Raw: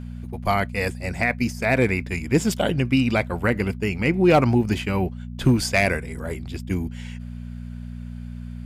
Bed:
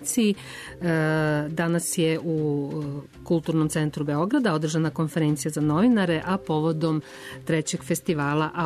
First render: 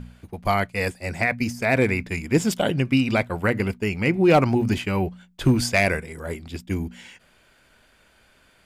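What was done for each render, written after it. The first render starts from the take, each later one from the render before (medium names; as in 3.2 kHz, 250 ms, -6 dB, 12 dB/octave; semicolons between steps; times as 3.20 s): de-hum 60 Hz, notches 4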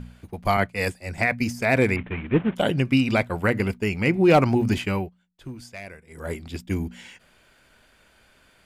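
0.57–1.18 s: three bands expanded up and down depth 100%; 1.96–2.56 s: CVSD coder 16 kbps; 4.92–6.25 s: dip -19 dB, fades 0.19 s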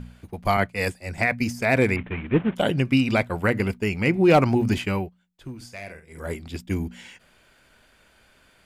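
5.56–6.27 s: doubling 49 ms -8 dB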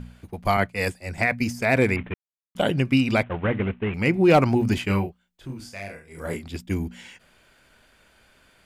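2.14–2.55 s: mute; 3.23–3.94 s: CVSD coder 16 kbps; 4.86–6.44 s: doubling 30 ms -3.5 dB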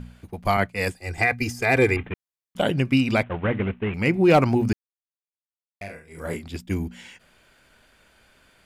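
0.96–2.07 s: comb 2.5 ms; 4.73–5.81 s: mute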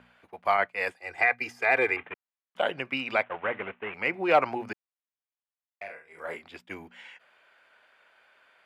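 high-pass 290 Hz 6 dB/octave; three-band isolator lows -17 dB, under 490 Hz, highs -18 dB, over 3.1 kHz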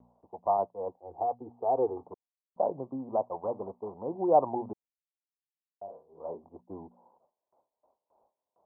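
steep low-pass 1 kHz 72 dB/octave; gate with hold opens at -59 dBFS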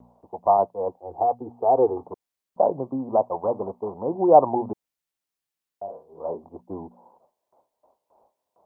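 trim +8.5 dB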